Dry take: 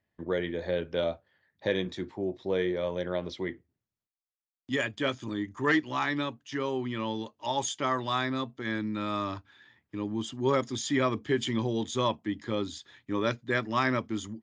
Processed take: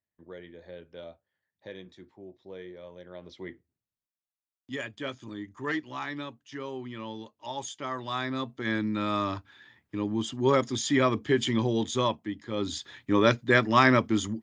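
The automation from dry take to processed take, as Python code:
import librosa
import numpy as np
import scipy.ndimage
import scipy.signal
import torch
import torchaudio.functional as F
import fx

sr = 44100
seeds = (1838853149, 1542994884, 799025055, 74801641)

y = fx.gain(x, sr, db=fx.line((3.07, -14.5), (3.48, -6.0), (7.87, -6.0), (8.68, 3.0), (11.9, 3.0), (12.48, -4.5), (12.73, 7.0)))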